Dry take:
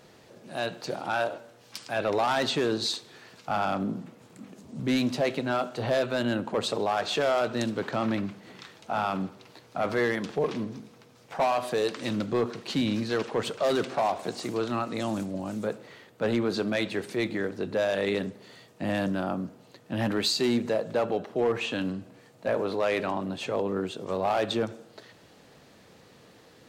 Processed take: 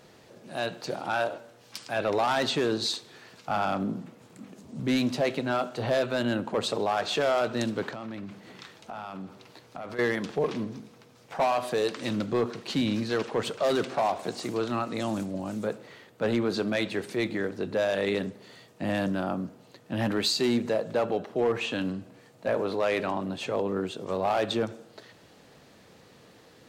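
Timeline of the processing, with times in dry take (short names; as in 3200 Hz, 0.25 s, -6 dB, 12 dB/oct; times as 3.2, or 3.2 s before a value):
7.89–9.99 compressor 4:1, threshold -36 dBFS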